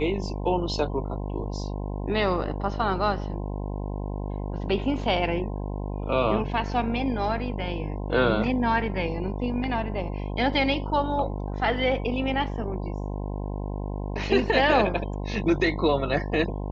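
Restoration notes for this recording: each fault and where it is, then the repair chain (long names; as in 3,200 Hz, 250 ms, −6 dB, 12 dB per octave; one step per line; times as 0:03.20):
mains buzz 50 Hz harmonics 21 −31 dBFS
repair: hum removal 50 Hz, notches 21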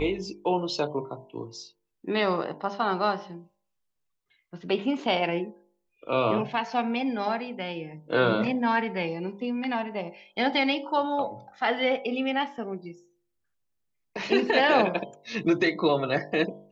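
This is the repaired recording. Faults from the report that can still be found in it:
none of them is left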